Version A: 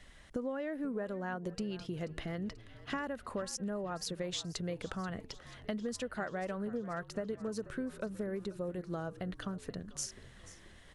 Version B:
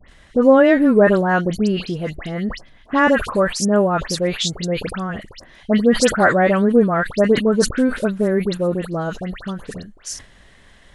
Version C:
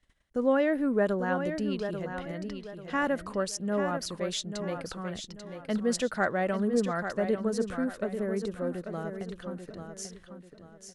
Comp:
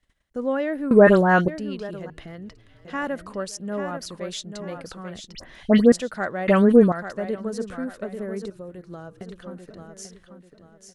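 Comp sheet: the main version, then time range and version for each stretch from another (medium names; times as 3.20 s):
C
0.91–1.48 s: from B
2.10–2.85 s: from A
5.35–5.92 s: from B
6.48–6.92 s: from B
8.50–9.21 s: from A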